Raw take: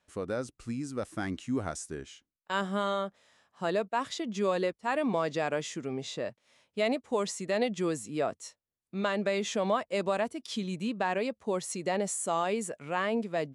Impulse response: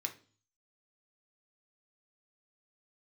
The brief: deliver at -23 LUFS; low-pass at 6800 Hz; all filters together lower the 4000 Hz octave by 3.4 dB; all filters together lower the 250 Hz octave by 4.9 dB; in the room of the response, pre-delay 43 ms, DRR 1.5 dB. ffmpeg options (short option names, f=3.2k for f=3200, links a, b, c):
-filter_complex "[0:a]lowpass=6.8k,equalizer=f=250:t=o:g=-6.5,equalizer=f=4k:t=o:g=-4,asplit=2[a][b];[1:a]atrim=start_sample=2205,adelay=43[c];[b][c]afir=irnorm=-1:irlink=0,volume=-1.5dB[d];[a][d]amix=inputs=2:normalize=0,volume=9.5dB"